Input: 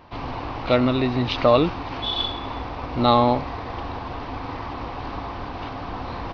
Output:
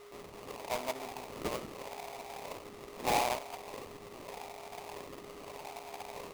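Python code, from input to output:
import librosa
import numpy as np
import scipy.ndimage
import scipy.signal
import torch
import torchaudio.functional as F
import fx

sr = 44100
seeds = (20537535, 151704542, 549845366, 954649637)

y = fx.wah_lfo(x, sr, hz=0.81, low_hz=660.0, high_hz=1400.0, q=6.2)
y = y + 10.0 ** (-45.0 / 20.0) * np.sin(2.0 * np.pi * 410.0 * np.arange(len(y)) / sr)
y = fx.sample_hold(y, sr, seeds[0], rate_hz=1600.0, jitter_pct=20)
y = F.gain(torch.from_numpy(y), -5.5).numpy()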